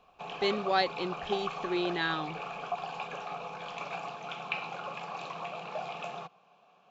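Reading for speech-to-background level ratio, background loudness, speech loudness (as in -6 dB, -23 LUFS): 6.5 dB, -38.5 LUFS, -32.0 LUFS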